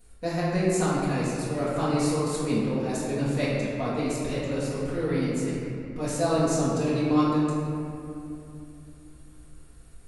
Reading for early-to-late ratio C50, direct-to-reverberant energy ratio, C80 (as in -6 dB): -3.0 dB, -10.5 dB, -0.5 dB